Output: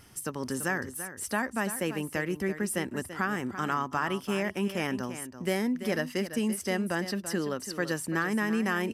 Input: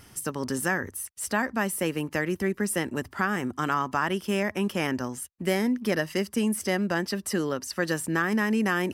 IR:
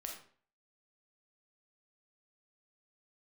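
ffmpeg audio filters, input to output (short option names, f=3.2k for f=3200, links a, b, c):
-filter_complex "[0:a]aresample=32000,aresample=44100,asplit=2[a][b];[b]aecho=0:1:337:0.266[c];[a][c]amix=inputs=2:normalize=0,volume=-3.5dB"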